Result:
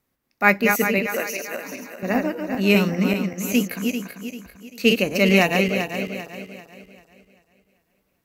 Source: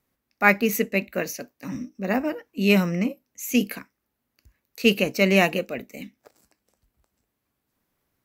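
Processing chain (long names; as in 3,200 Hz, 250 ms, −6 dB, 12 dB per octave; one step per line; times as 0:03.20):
feedback delay that plays each chunk backwards 196 ms, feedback 61%, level −4.5 dB
0:01.06–0:02.03: high-pass filter 400 Hz 12 dB per octave
level +1 dB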